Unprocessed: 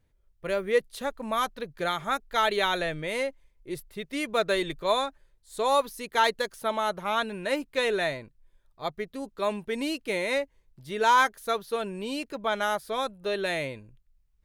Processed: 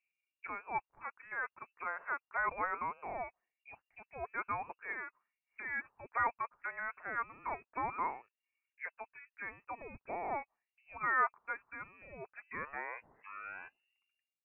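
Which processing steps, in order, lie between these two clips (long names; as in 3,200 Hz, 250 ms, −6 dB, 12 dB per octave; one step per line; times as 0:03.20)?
turntable brake at the end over 2.52 s
envelope filter 430–1,800 Hz, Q 3.4, up, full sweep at −29 dBFS
voice inversion scrambler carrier 2,800 Hz
level −1.5 dB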